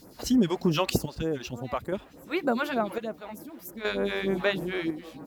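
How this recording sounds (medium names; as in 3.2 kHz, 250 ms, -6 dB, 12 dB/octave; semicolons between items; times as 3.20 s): phasing stages 2, 3.3 Hz, lowest notch 130–3600 Hz; chopped level 0.52 Hz, depth 60%, duty 55%; a quantiser's noise floor 12-bit, dither none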